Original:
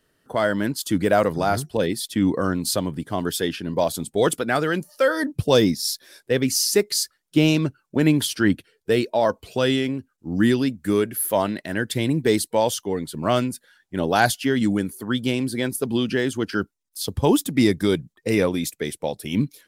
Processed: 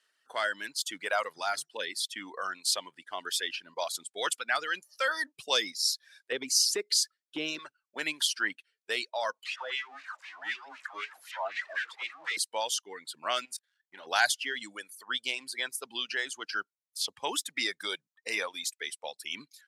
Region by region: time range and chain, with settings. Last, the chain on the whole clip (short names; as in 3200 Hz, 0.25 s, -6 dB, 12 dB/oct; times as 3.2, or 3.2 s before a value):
6.32–7.59 resonant low shelf 580 Hz +10.5 dB, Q 1.5 + compressor 2:1, threshold -13 dBFS
9.44–12.37 zero-crossing step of -20.5 dBFS + LFO band-pass sine 3.9 Hz 690–2400 Hz + dispersion lows, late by 75 ms, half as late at 620 Hz
13.45–14.07 doubler 25 ms -13 dB + sample leveller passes 2 + level quantiser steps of 16 dB
whole clip: LPF 7900 Hz 12 dB/oct; reverb removal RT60 1.3 s; Bessel high-pass 1600 Hz, order 2